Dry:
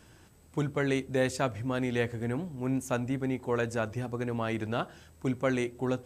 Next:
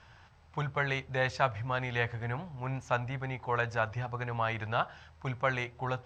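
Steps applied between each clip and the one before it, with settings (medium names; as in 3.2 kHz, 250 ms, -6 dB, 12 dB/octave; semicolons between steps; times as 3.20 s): FFT filter 130 Hz 0 dB, 290 Hz -16 dB, 840 Hz +6 dB, 2.8 kHz +2 dB, 5.7 kHz -3 dB, 9.9 kHz -30 dB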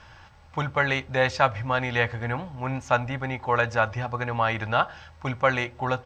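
comb 3.6 ms, depth 31%; trim +7.5 dB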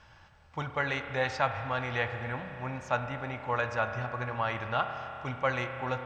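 spring tank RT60 3.4 s, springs 32 ms, chirp 70 ms, DRR 6.5 dB; trim -7.5 dB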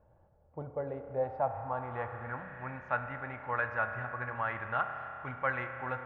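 low-pass sweep 550 Hz -> 1.7 kHz, 1.04–2.64 s; trim -6.5 dB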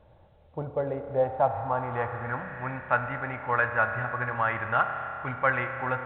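trim +7.5 dB; A-law 64 kbps 8 kHz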